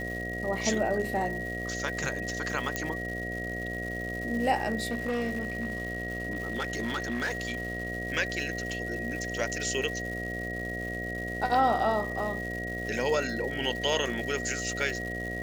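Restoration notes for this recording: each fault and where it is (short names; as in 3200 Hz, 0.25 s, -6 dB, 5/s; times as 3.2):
buzz 60 Hz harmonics 12 -37 dBFS
crackle 350/s -37 dBFS
tone 1900 Hz -35 dBFS
2.76 pop -13 dBFS
4.9–7.88 clipped -26 dBFS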